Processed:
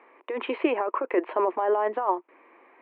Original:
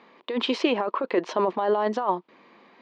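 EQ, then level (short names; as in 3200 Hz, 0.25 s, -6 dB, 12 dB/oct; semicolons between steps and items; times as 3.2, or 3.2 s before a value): elliptic band-pass 310–2400 Hz, stop band 40 dB; 0.0 dB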